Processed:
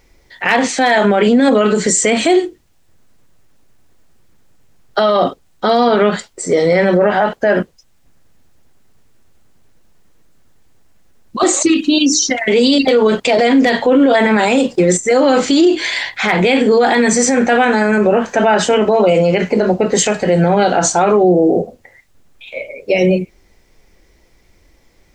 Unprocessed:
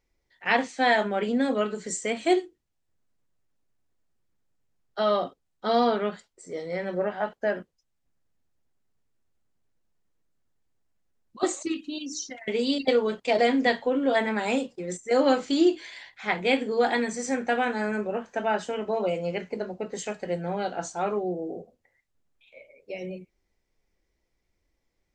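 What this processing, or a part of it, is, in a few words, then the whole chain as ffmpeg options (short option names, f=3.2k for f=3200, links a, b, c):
loud club master: -af "acompressor=threshold=-25dB:ratio=2,asoftclip=type=hard:threshold=-16.5dB,alimiter=level_in=27dB:limit=-1dB:release=50:level=0:latency=1,volume=-3dB"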